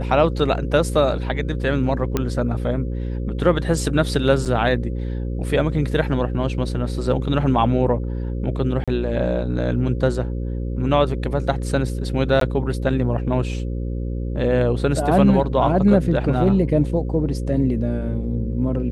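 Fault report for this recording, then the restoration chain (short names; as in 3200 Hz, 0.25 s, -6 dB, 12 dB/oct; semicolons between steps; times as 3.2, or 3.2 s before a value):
buzz 60 Hz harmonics 9 -25 dBFS
2.17 pop -7 dBFS
4.45–4.46 gap 7.1 ms
8.84–8.88 gap 36 ms
12.4–12.41 gap 13 ms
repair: de-click; de-hum 60 Hz, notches 9; interpolate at 4.45, 7.1 ms; interpolate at 8.84, 36 ms; interpolate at 12.4, 13 ms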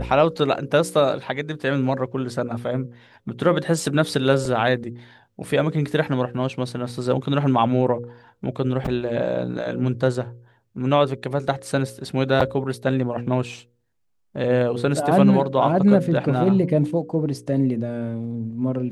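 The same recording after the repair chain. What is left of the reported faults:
none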